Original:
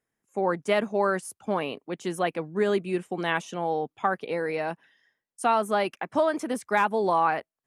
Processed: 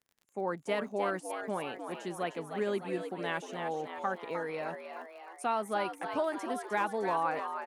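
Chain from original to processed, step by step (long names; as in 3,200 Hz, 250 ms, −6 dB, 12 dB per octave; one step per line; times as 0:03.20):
surface crackle 37 per second −42 dBFS
echo with shifted repeats 306 ms, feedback 55%, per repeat +83 Hz, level −7.5 dB
level −8.5 dB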